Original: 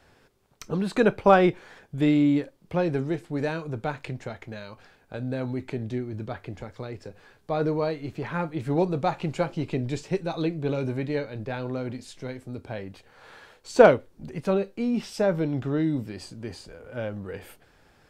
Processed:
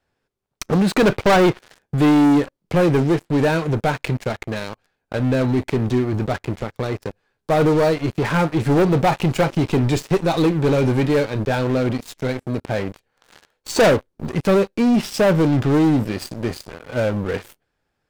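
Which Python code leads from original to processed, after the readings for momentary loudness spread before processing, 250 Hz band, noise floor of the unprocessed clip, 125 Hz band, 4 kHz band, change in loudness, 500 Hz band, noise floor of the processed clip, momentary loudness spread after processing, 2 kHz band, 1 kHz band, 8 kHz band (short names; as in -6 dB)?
19 LU, +8.5 dB, -61 dBFS, +10.0 dB, +11.5 dB, +7.0 dB, +6.0 dB, -76 dBFS, 12 LU, +8.0 dB, +6.0 dB, +12.5 dB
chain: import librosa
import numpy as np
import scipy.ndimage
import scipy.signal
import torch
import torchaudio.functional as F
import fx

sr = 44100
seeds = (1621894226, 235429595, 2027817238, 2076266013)

y = fx.leveller(x, sr, passes=5)
y = y * 10.0 ** (-5.5 / 20.0)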